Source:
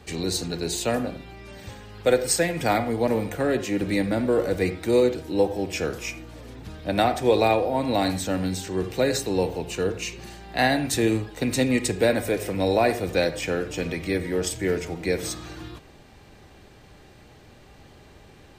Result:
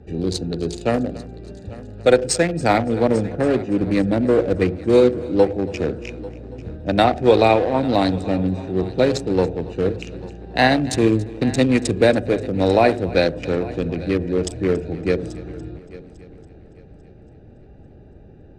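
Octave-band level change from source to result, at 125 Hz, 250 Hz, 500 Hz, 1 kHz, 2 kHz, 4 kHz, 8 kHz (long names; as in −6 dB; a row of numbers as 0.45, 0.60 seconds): +6.5, +6.0, +5.5, +5.0, +3.0, +1.5, −2.5 decibels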